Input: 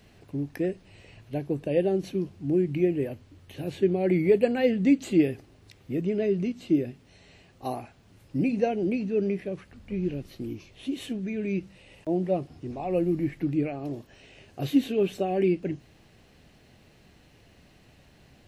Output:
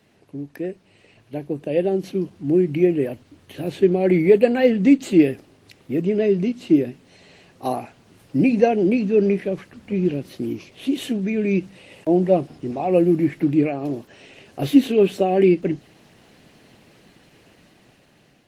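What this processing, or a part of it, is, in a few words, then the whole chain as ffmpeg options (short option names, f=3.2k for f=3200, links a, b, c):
video call: -af "highpass=150,dynaudnorm=f=830:g=5:m=10.5dB" -ar 48000 -c:a libopus -b:a 20k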